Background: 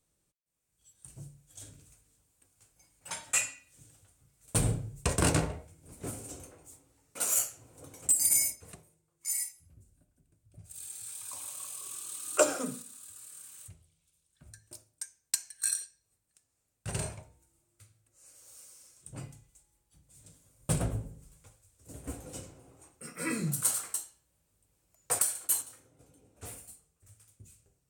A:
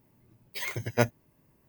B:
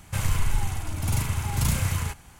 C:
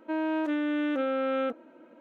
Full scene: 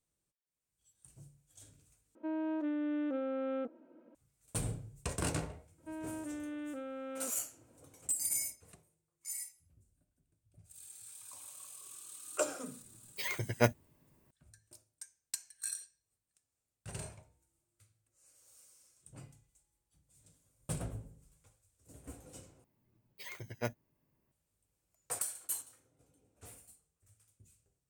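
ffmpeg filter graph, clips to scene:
ffmpeg -i bed.wav -i cue0.wav -i cue1.wav -i cue2.wav -filter_complex "[3:a]asplit=2[link_01][link_02];[1:a]asplit=2[link_03][link_04];[0:a]volume=-9dB[link_05];[link_01]tiltshelf=frequency=970:gain=6.5[link_06];[link_02]lowshelf=frequency=180:gain=12[link_07];[link_05]asplit=3[link_08][link_09][link_10];[link_08]atrim=end=2.154[link_11];[link_06]atrim=end=2,asetpts=PTS-STARTPTS,volume=-11.5dB[link_12];[link_09]atrim=start=4.146:end=22.644[link_13];[link_04]atrim=end=1.68,asetpts=PTS-STARTPTS,volume=-12.5dB[link_14];[link_10]atrim=start=24.316[link_15];[link_07]atrim=end=2,asetpts=PTS-STARTPTS,volume=-16.5dB,afade=type=in:duration=0.004:curve=hsin,afade=type=out:start_time=1.996:duration=0.004:curve=hsin,adelay=5780[link_16];[link_03]atrim=end=1.68,asetpts=PTS-STARTPTS,volume=-3dB,afade=type=in:duration=0.004:curve=hsin,afade=type=out:start_time=1.676:duration=0.004:curve=hsin,adelay=12630[link_17];[link_11][link_12]acrossfade=duration=0.004:curve1=hsin:curve2=hsin[link_18];[link_18][link_13]acrossfade=duration=0.004:curve1=hsin:curve2=hsin[link_19];[link_19][link_14]acrossfade=duration=0.004:curve1=hsin:curve2=hsin[link_20];[link_20][link_15]acrossfade=duration=0.004:curve1=hsin:curve2=hsin[link_21];[link_21][link_16][link_17]amix=inputs=3:normalize=0" out.wav

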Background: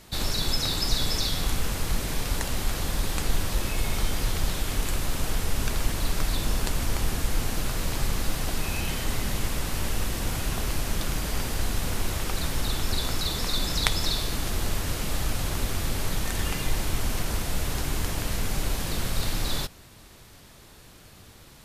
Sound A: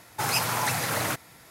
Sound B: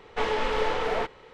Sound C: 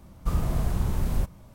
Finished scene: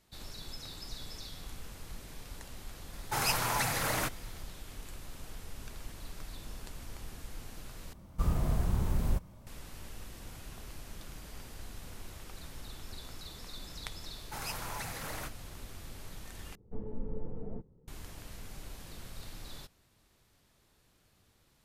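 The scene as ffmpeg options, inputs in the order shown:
ffmpeg -i bed.wav -i cue0.wav -i cue1.wav -i cue2.wav -filter_complex "[1:a]asplit=2[link_01][link_02];[0:a]volume=-18.5dB[link_03];[2:a]lowpass=frequency=180:width_type=q:width=1.6[link_04];[link_03]asplit=3[link_05][link_06][link_07];[link_05]atrim=end=7.934[link_08];[3:a]atrim=end=1.54,asetpts=PTS-STARTPTS,volume=-4dB[link_09];[link_06]atrim=start=9.466:end=16.554[link_10];[link_04]atrim=end=1.33,asetpts=PTS-STARTPTS,volume=-3dB[link_11];[link_07]atrim=start=17.876[link_12];[link_01]atrim=end=1.5,asetpts=PTS-STARTPTS,volume=-4.5dB,afade=type=in:duration=0.004:curve=hsin,afade=type=out:start_time=1.496:duration=0.004:curve=hsin,adelay=2930[link_13];[link_02]atrim=end=1.5,asetpts=PTS-STARTPTS,volume=-14dB,afade=type=in:duration=0.004:curve=hsin,afade=type=out:start_time=1.496:duration=0.004:curve=hsin,adelay=14130[link_14];[link_08][link_09]acrossfade=duration=0.004:curve1=hsin:curve2=hsin[link_15];[link_15][link_10]acrossfade=duration=0.004:curve1=hsin:curve2=hsin[link_16];[link_16][link_11]acrossfade=duration=0.004:curve1=hsin:curve2=hsin[link_17];[link_17][link_12]acrossfade=duration=0.004:curve1=hsin:curve2=hsin[link_18];[link_18][link_13][link_14]amix=inputs=3:normalize=0" out.wav

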